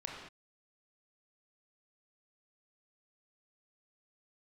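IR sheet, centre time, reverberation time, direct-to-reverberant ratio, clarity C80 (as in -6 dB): 58 ms, not exponential, -1.5 dB, 3.5 dB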